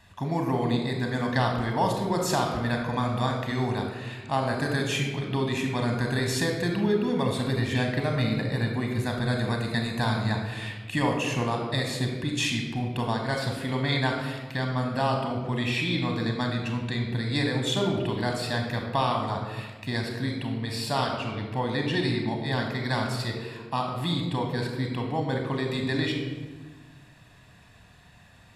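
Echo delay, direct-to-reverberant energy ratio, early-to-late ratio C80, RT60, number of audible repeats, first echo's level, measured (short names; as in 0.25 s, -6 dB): none, 2.0 dB, 6.5 dB, 1.4 s, none, none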